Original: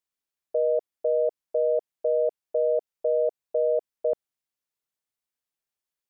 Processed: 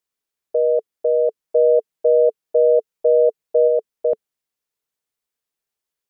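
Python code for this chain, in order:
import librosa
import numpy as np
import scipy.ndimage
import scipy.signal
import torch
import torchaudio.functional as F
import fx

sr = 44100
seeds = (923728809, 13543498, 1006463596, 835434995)

y = fx.peak_eq(x, sr, hz=440.0, db=6.0, octaves=0.26)
y = fx.comb(y, sr, ms=6.3, depth=0.44, at=(1.42, 3.67), fade=0.02)
y = fx.dynamic_eq(y, sr, hz=210.0, q=2.2, threshold_db=-45.0, ratio=4.0, max_db=5)
y = y * 10.0 ** (4.0 / 20.0)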